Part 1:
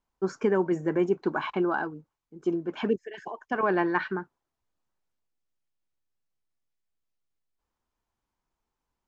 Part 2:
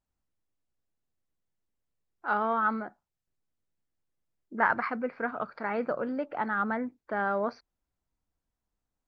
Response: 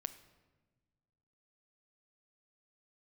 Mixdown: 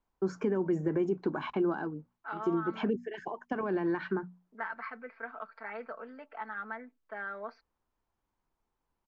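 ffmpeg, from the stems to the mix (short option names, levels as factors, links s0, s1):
-filter_complex "[0:a]alimiter=limit=0.106:level=0:latency=1:release=72,bandreject=f=60:t=h:w=6,bandreject=f=120:t=h:w=6,bandreject=f=180:t=h:w=6,bandreject=f=240:t=h:w=6,volume=1.26[s0];[1:a]agate=range=0.0224:threshold=0.00562:ratio=3:detection=peak,bandpass=f=2600:t=q:w=0.68:csg=0,aecho=1:1:4.5:0.79,volume=0.668[s1];[s0][s1]amix=inputs=2:normalize=0,highshelf=f=2900:g=-10,acrossover=split=350|3000[s2][s3][s4];[s3]acompressor=threshold=0.0178:ratio=6[s5];[s2][s5][s4]amix=inputs=3:normalize=0"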